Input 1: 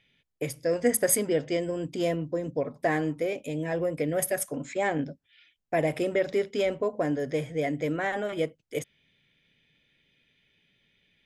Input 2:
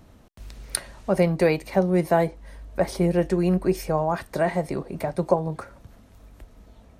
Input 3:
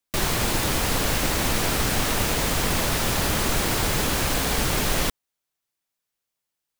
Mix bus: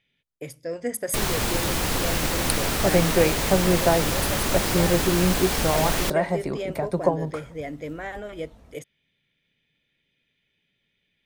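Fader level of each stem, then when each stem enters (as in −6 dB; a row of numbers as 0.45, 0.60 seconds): −5.0, −0.5, −1.5 decibels; 0.00, 1.75, 1.00 seconds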